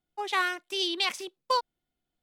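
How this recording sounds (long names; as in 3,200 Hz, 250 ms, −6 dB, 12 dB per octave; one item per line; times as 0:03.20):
background noise floor −86 dBFS
spectral slope −3.5 dB per octave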